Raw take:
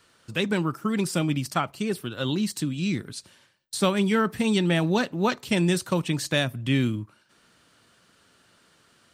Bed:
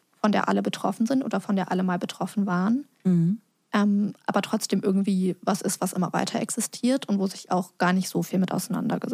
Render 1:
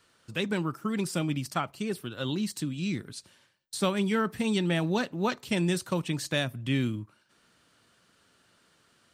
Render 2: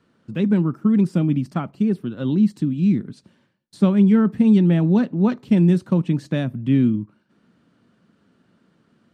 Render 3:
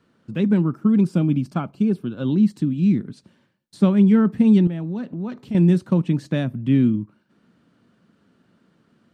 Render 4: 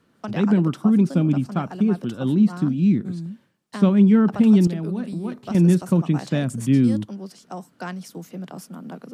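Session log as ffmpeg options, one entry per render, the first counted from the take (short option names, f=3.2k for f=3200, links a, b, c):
-af "volume=-4.5dB"
-af "lowpass=f=1.7k:p=1,equalizer=f=210:t=o:w=1.6:g=15"
-filter_complex "[0:a]asettb=1/sr,asplit=3[a][b][c];[a]atrim=end=0.844[d];[b]atrim=start=0.84:end=2.32,asetpts=PTS-STARTPTS,afade=t=in:d=0.004:c=qsin,afade=t=out:st=1.476:d=0.004:c=qsin,asuperstop=centerf=1900:order=4:qfactor=6.6[e];[c]atrim=start=2.316[f];[d][e]acrossfade=d=0.004:c1=hsin:c2=qsin[g];[g][f]acrossfade=d=0.004:c1=qsin:c2=hsin,asettb=1/sr,asplit=3[h][i][j];[h]atrim=end=4.674[k];[i]atrim=start=4.67:end=5.55,asetpts=PTS-STARTPTS,afade=t=in:d=0.004:c=qsin,afade=t=out:st=0.876:d=0.004:c=qsin,acompressor=threshold=-28dB:ratio=3:attack=3.2:release=140:knee=1:detection=peak[l];[j]atrim=start=5.546[m];[k][l]acrossfade=d=0.004:c1=hsin:c2=qsin[n];[n][m]acrossfade=d=0.004:c1=qsin:c2=hsin"
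-filter_complex "[1:a]volume=-10dB[a];[0:a][a]amix=inputs=2:normalize=0"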